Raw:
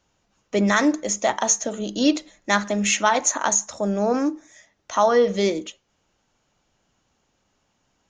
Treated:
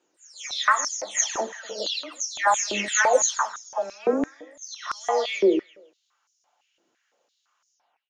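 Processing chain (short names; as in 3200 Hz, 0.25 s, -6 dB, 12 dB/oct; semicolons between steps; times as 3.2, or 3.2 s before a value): spectral delay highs early, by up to 0.383 s; feedback echo 0.165 s, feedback 23%, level -15 dB; stepped high-pass 5.9 Hz 350–5800 Hz; gain -3.5 dB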